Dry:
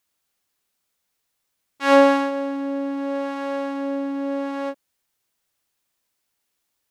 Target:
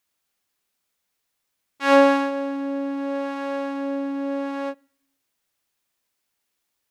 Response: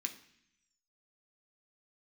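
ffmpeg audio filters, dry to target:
-filter_complex "[0:a]asplit=2[a][b];[1:a]atrim=start_sample=2205,lowpass=4.5k[c];[b][c]afir=irnorm=-1:irlink=0,volume=-14.5dB[d];[a][d]amix=inputs=2:normalize=0,volume=-1.5dB"

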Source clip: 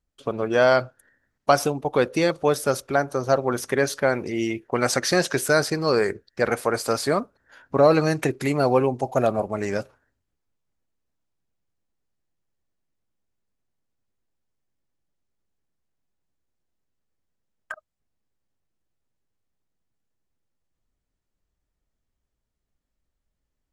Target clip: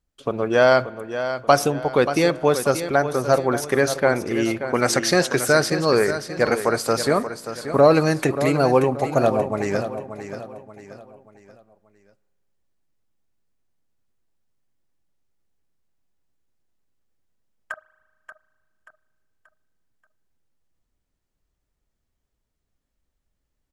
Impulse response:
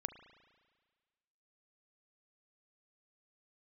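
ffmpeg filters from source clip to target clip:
-filter_complex "[0:a]aecho=1:1:582|1164|1746|2328:0.299|0.119|0.0478|0.0191,asplit=2[a][b];[1:a]atrim=start_sample=2205[c];[b][c]afir=irnorm=-1:irlink=0,volume=-8dB[d];[a][d]amix=inputs=2:normalize=0"

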